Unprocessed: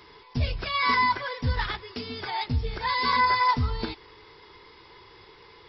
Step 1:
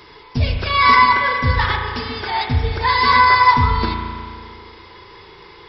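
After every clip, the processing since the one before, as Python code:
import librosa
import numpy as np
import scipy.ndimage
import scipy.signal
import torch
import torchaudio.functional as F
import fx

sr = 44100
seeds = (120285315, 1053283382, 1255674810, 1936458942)

y = fx.dynamic_eq(x, sr, hz=1300.0, q=0.79, threshold_db=-33.0, ratio=4.0, max_db=3)
y = fx.rev_spring(y, sr, rt60_s=2.1, pass_ms=(35,), chirp_ms=60, drr_db=3.0)
y = y * 10.0 ** (7.5 / 20.0)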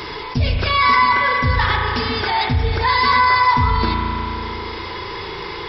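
y = fx.env_flatten(x, sr, amount_pct=50)
y = y * 10.0 ** (-4.0 / 20.0)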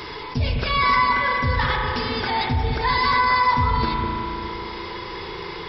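y = fx.echo_bbd(x, sr, ms=204, stages=1024, feedback_pct=57, wet_db=-4.5)
y = y * 10.0 ** (-4.5 / 20.0)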